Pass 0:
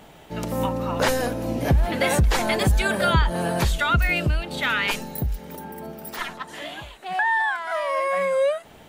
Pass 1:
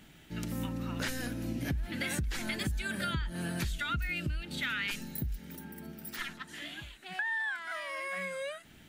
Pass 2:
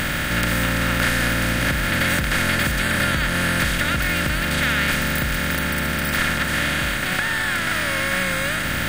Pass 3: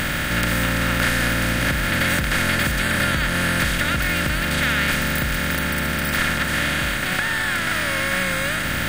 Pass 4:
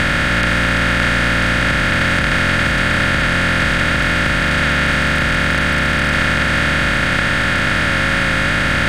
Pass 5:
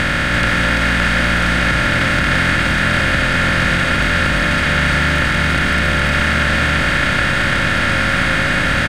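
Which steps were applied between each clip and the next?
flat-topped bell 690 Hz −12.5 dB; downward compressor 5 to 1, threshold −25 dBFS, peak gain reduction 10.5 dB; level −6 dB
compressor on every frequency bin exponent 0.2; level +4.5 dB
no processing that can be heard
compressor on every frequency bin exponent 0.2; high-frequency loss of the air 77 metres
single-tap delay 339 ms −5 dB; level −1 dB

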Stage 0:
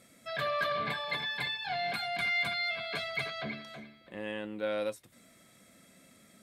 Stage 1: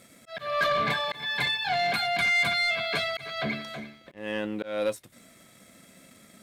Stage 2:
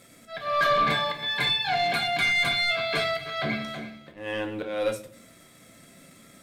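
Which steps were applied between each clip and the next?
volume swells 248 ms; leveller curve on the samples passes 1; level +4.5 dB
rectangular room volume 46 cubic metres, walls mixed, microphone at 0.44 metres

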